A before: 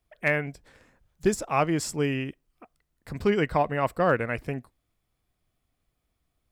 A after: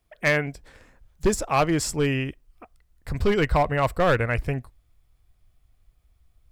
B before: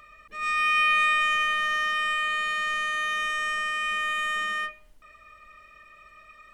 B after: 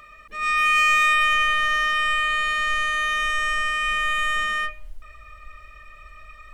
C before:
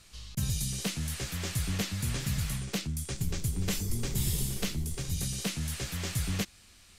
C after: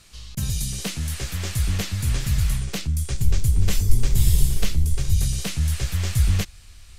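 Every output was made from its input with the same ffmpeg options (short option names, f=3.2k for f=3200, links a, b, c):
-af "asoftclip=type=hard:threshold=-18dB,asubboost=boost=6.5:cutoff=86,volume=4.5dB"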